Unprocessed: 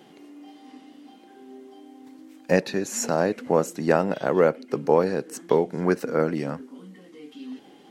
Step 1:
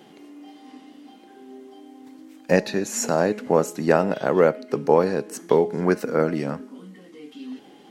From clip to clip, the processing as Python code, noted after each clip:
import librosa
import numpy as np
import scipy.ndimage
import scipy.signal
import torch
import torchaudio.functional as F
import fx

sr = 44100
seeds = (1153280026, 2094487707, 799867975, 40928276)

y = fx.comb_fb(x, sr, f0_hz=210.0, decay_s=0.72, harmonics='all', damping=0.0, mix_pct=50)
y = y * librosa.db_to_amplitude(7.5)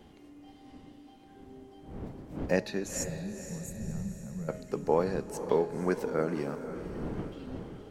y = fx.dmg_wind(x, sr, seeds[0], corner_hz=290.0, level_db=-35.0)
y = fx.spec_box(y, sr, start_s=3.04, length_s=1.45, low_hz=220.0, high_hz=6300.0, gain_db=-27)
y = fx.echo_diffused(y, sr, ms=505, feedback_pct=51, wet_db=-10.5)
y = y * librosa.db_to_amplitude(-9.0)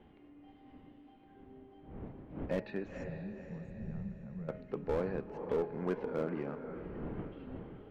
y = scipy.signal.sosfilt(scipy.signal.butter(4, 2900.0, 'lowpass', fs=sr, output='sos'), x)
y = fx.slew_limit(y, sr, full_power_hz=36.0)
y = y * librosa.db_to_amplitude(-5.0)